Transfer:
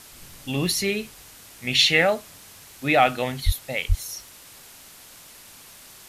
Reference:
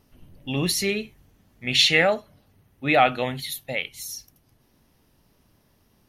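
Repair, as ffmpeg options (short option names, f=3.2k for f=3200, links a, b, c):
-filter_complex "[0:a]asplit=3[a][b][c];[a]afade=t=out:st=3.45:d=0.02[d];[b]highpass=f=140:w=0.5412,highpass=f=140:w=1.3066,afade=t=in:st=3.45:d=0.02,afade=t=out:st=3.57:d=0.02[e];[c]afade=t=in:st=3.57:d=0.02[f];[d][e][f]amix=inputs=3:normalize=0,asplit=3[g][h][i];[g]afade=t=out:st=3.88:d=0.02[j];[h]highpass=f=140:w=0.5412,highpass=f=140:w=1.3066,afade=t=in:st=3.88:d=0.02,afade=t=out:st=4:d=0.02[k];[i]afade=t=in:st=4:d=0.02[l];[j][k][l]amix=inputs=3:normalize=0,afwtdn=0.0056"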